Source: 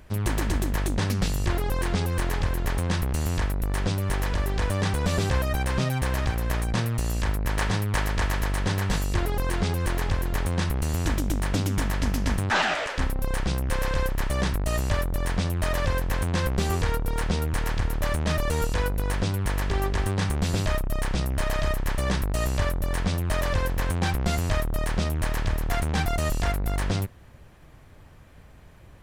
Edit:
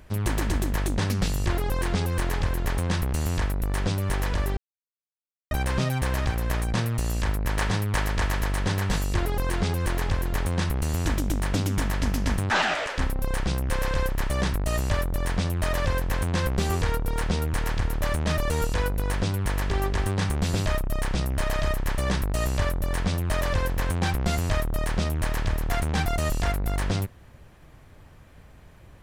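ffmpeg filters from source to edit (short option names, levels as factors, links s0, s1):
-filter_complex "[0:a]asplit=3[s0][s1][s2];[s0]atrim=end=4.57,asetpts=PTS-STARTPTS,afade=t=out:st=4.566:d=0.004:c=hsin[s3];[s1]atrim=start=4.57:end=5.51,asetpts=PTS-STARTPTS,volume=0[s4];[s2]atrim=start=5.51,asetpts=PTS-STARTPTS,afade=t=in:d=0.004:c=hsin[s5];[s3][s4][s5]concat=n=3:v=0:a=1"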